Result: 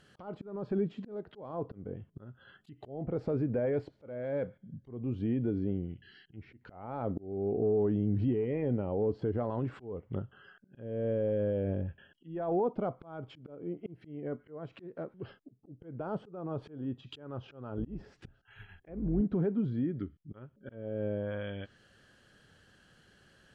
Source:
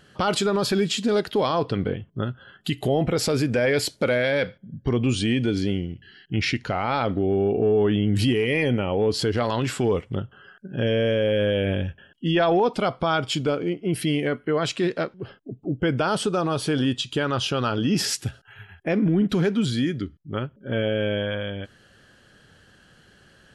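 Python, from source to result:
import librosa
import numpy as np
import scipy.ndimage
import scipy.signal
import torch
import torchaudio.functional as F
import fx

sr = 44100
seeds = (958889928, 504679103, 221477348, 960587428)

y = fx.octave_divider(x, sr, octaves=2, level_db=-5.0, at=(17.77, 19.21))
y = fx.env_lowpass_down(y, sr, base_hz=770.0, full_db=-21.0)
y = fx.auto_swell(y, sr, attack_ms=356.0)
y = y * librosa.db_to_amplitude(-8.0)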